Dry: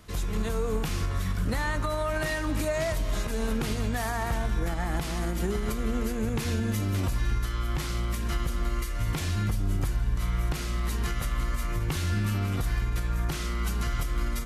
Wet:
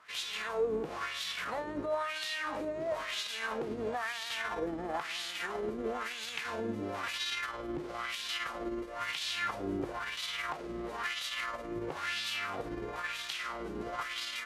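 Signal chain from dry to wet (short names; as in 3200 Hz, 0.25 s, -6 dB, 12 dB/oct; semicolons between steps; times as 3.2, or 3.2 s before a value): spectral whitening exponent 0.6; wah 1 Hz 320–3700 Hz, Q 2.5; gain +2 dB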